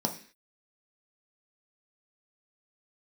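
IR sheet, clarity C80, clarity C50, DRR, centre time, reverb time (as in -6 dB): 16.0 dB, 11.5 dB, 2.5 dB, 12 ms, 0.45 s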